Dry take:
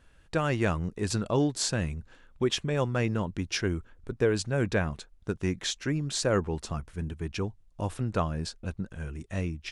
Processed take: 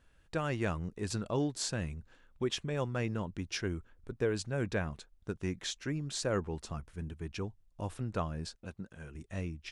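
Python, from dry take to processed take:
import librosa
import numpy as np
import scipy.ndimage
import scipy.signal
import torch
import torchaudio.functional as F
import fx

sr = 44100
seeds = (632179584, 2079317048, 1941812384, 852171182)

y = fx.highpass(x, sr, hz=160.0, slope=6, at=(8.55, 9.15))
y = y * librosa.db_to_amplitude(-6.5)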